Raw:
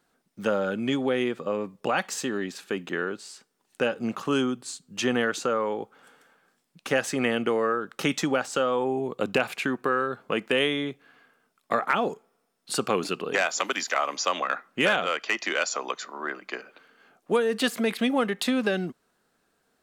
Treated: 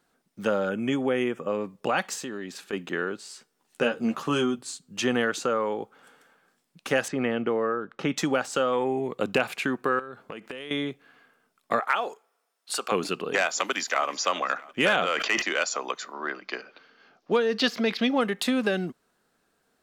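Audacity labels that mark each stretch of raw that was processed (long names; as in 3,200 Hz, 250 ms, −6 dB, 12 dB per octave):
0.690000	1.490000	Butterworth band-reject 4,200 Hz, Q 1.9
2.150000	2.730000	downward compressor 2 to 1, threshold −35 dBFS
3.290000	4.590000	double-tracking delay 13 ms −5 dB
7.080000	8.170000	head-to-tape spacing loss at 10 kHz 23 dB
8.730000	9.180000	parametric band 2,000 Hz +11 dB 0.41 octaves
9.990000	10.710000	downward compressor 8 to 1, threshold −34 dBFS
11.800000	12.920000	high-pass filter 630 Hz
13.600000	14.060000	delay throw 330 ms, feedback 55%, level −17.5 dB
14.790000	15.420000	level that may fall only so fast at most 36 dB per second
16.130000	18.210000	high shelf with overshoot 6,800 Hz −10 dB, Q 3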